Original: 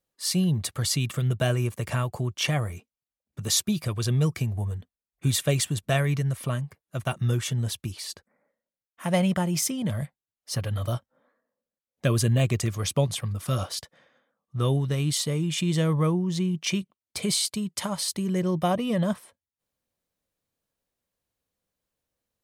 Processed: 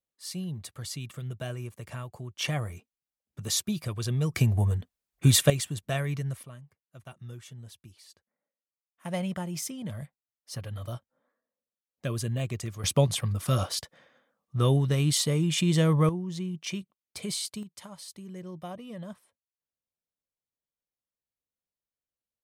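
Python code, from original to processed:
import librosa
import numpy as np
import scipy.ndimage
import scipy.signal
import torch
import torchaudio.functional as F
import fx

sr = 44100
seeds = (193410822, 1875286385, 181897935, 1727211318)

y = fx.gain(x, sr, db=fx.steps((0.0, -11.5), (2.39, -4.5), (4.34, 4.5), (5.5, -6.0), (6.43, -18.0), (9.05, -8.5), (12.84, 1.0), (16.09, -7.5), (17.63, -15.5)))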